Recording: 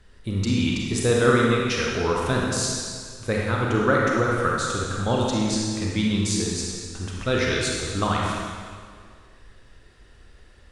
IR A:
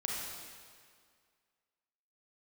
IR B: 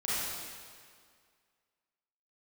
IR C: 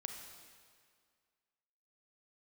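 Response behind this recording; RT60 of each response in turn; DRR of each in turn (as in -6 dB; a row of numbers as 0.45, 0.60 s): A; 2.0, 2.0, 2.0 s; -3.0, -10.5, 3.5 dB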